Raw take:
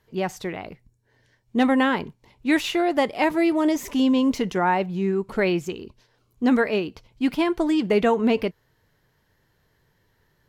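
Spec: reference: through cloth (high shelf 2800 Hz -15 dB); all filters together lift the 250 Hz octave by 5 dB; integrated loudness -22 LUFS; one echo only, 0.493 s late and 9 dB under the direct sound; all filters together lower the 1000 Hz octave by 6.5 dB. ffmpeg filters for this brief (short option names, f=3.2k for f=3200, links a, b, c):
-af "equalizer=f=250:t=o:g=6.5,equalizer=f=1k:t=o:g=-7.5,highshelf=f=2.8k:g=-15,aecho=1:1:493:0.355,volume=-2.5dB"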